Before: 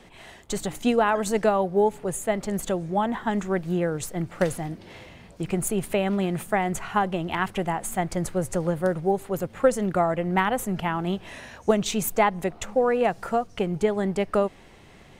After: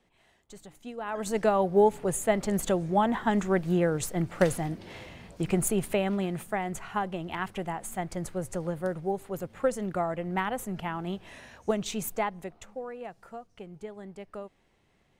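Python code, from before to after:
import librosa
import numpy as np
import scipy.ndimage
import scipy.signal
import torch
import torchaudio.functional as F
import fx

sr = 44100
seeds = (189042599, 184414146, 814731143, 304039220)

y = fx.gain(x, sr, db=fx.line((0.95, -19.0), (1.21, -6.5), (1.72, 0.0), (5.58, 0.0), (6.53, -7.0), (12.06, -7.0), (12.94, -18.0)))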